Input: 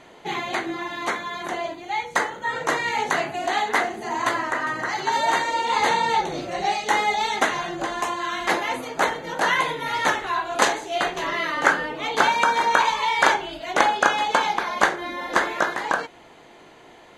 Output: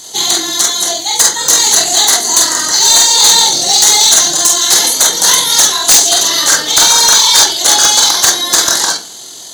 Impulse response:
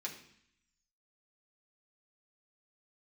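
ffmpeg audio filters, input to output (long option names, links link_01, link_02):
-filter_complex "[0:a]aexciter=amount=12.5:drive=9.5:freq=3800,asplit=2[link_01][link_02];[1:a]atrim=start_sample=2205,asetrate=40131,aresample=44100,adelay=72[link_03];[link_02][link_03]afir=irnorm=-1:irlink=0,volume=0dB[link_04];[link_01][link_04]amix=inputs=2:normalize=0,atempo=1.8,acontrast=24,volume=-1dB"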